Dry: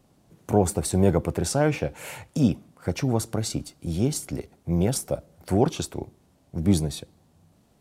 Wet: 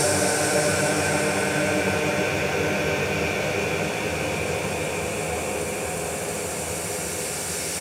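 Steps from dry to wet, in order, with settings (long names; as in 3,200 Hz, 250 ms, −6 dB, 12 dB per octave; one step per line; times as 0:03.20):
tilt shelving filter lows −9 dB, about 760 Hz
repeating echo 636 ms, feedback 46%, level −3 dB
extreme stretch with random phases 20×, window 0.50 s, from 0:01.61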